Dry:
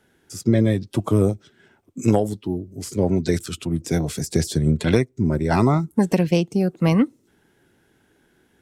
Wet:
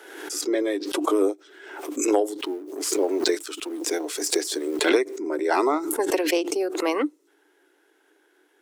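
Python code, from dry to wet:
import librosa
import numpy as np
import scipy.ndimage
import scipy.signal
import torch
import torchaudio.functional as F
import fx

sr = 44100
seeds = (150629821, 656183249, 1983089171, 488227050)

y = fx.law_mismatch(x, sr, coded='A', at=(2.39, 4.89))
y = scipy.signal.sosfilt(scipy.signal.cheby1(6, 3, 290.0, 'highpass', fs=sr, output='sos'), y)
y = fx.pre_swell(y, sr, db_per_s=51.0)
y = F.gain(torch.from_numpy(y), 1.0).numpy()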